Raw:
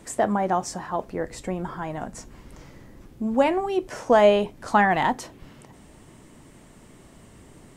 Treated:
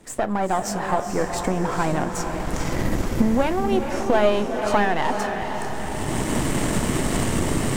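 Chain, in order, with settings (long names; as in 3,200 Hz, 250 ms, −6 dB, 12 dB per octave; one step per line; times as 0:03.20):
gain on one half-wave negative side −7 dB
camcorder AGC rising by 24 dB per second
feedback delay with all-pass diffusion 456 ms, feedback 57%, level −6 dB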